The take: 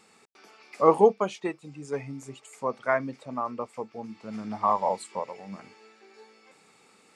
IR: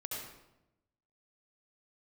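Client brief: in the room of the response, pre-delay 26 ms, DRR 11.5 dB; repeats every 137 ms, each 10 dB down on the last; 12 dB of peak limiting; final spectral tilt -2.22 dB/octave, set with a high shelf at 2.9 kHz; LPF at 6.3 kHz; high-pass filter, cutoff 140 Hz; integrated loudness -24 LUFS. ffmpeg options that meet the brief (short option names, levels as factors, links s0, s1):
-filter_complex "[0:a]highpass=140,lowpass=6300,highshelf=f=2900:g=-4.5,alimiter=limit=0.133:level=0:latency=1,aecho=1:1:137|274|411|548:0.316|0.101|0.0324|0.0104,asplit=2[s0][s1];[1:a]atrim=start_sample=2205,adelay=26[s2];[s1][s2]afir=irnorm=-1:irlink=0,volume=0.251[s3];[s0][s3]amix=inputs=2:normalize=0,volume=2.66"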